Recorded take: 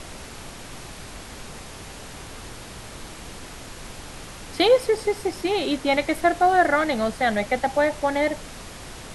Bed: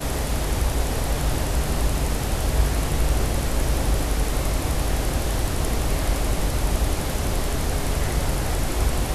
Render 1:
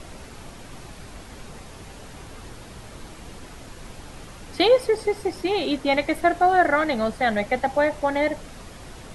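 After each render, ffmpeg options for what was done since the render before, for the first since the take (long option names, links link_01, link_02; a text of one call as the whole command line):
ffmpeg -i in.wav -af "afftdn=noise_reduction=6:noise_floor=-40" out.wav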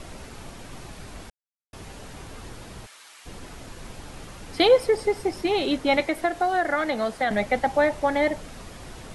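ffmpeg -i in.wav -filter_complex "[0:a]asplit=3[link_01][link_02][link_03];[link_01]afade=type=out:start_time=2.85:duration=0.02[link_04];[link_02]highpass=1400,afade=type=in:start_time=2.85:duration=0.02,afade=type=out:start_time=3.25:duration=0.02[link_05];[link_03]afade=type=in:start_time=3.25:duration=0.02[link_06];[link_04][link_05][link_06]amix=inputs=3:normalize=0,asettb=1/sr,asplit=3[link_07][link_08][link_09];[link_07]atrim=end=6.004[link_10];[link_08]atrim=start=6:end=7.31,asetpts=PTS-STARTPTS,afade=type=in:duration=0.004:curve=qsin,afade=type=out:start_time=1.306:duration=0.004:curve=qsin,acrossover=split=230|2300[link_11][link_12][link_13];[link_11]acompressor=threshold=-45dB:ratio=4[link_14];[link_12]acompressor=threshold=-21dB:ratio=4[link_15];[link_13]acompressor=threshold=-35dB:ratio=4[link_16];[link_14][link_15][link_16]amix=inputs=3:normalize=0[link_17];[link_09]atrim=start=7.306[link_18];[link_10][link_17]acrossfade=duration=0.004:curve1=hsin:curve2=qsin[link_19];[link_19][link_18]acrossfade=duration=0.004:curve1=qsin:curve2=hsin,asplit=3[link_20][link_21][link_22];[link_20]atrim=end=1.3,asetpts=PTS-STARTPTS,afade=type=out:start_time=1.296:duration=0.004:curve=hsin[link_23];[link_21]atrim=start=1.3:end=1.73,asetpts=PTS-STARTPTS,volume=0[link_24];[link_22]atrim=start=1.73,asetpts=PTS-STARTPTS,afade=type=in:duration=0.004:curve=hsin[link_25];[link_23][link_24][link_25]concat=n=3:v=0:a=1" out.wav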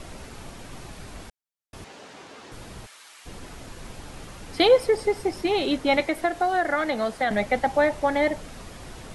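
ffmpeg -i in.wav -filter_complex "[0:a]asettb=1/sr,asplit=3[link_01][link_02][link_03];[link_01]atrim=end=1.844[link_04];[link_02]atrim=start=1.84:end=2.52,asetpts=PTS-STARTPTS,afade=type=in:duration=0.004:curve=qsin,afade=type=out:start_time=0.676:duration=0.004:curve=qsin,highpass=280,lowpass=6500[link_05];[link_03]atrim=start=2.516[link_06];[link_04][link_05]acrossfade=duration=0.004:curve1=hsin:curve2=qsin[link_07];[link_07][link_06]acrossfade=duration=0.004:curve1=qsin:curve2=hsin" out.wav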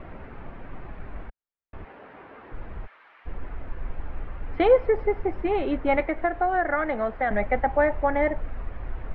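ffmpeg -i in.wav -af "lowpass=frequency=2100:width=0.5412,lowpass=frequency=2100:width=1.3066,asubboost=boost=6:cutoff=62" out.wav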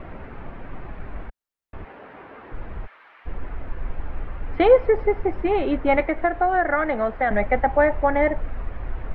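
ffmpeg -i in.wav -af "volume=3.5dB" out.wav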